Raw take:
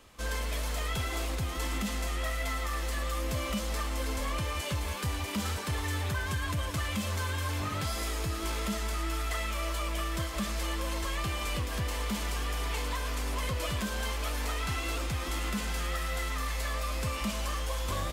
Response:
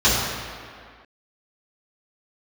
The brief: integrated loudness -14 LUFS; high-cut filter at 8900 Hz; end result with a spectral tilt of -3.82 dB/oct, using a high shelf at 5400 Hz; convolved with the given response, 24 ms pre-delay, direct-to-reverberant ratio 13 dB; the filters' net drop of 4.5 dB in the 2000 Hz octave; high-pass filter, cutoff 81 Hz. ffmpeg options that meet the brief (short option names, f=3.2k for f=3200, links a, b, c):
-filter_complex "[0:a]highpass=81,lowpass=8.9k,equalizer=f=2k:t=o:g=-6.5,highshelf=f=5.4k:g=6.5,asplit=2[a][b];[1:a]atrim=start_sample=2205,adelay=24[c];[b][c]afir=irnorm=-1:irlink=0,volume=-35dB[d];[a][d]amix=inputs=2:normalize=0,volume=19.5dB"